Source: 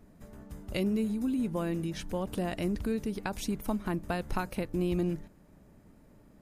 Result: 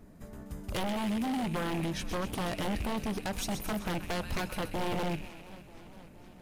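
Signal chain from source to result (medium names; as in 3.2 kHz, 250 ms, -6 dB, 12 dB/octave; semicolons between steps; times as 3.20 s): rattle on loud lows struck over -34 dBFS, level -33 dBFS; on a send: feedback echo behind a high-pass 129 ms, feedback 56%, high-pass 2 kHz, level -8 dB; on the sum: wavefolder -30 dBFS; modulated delay 468 ms, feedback 66%, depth 124 cents, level -19 dB; trim +3 dB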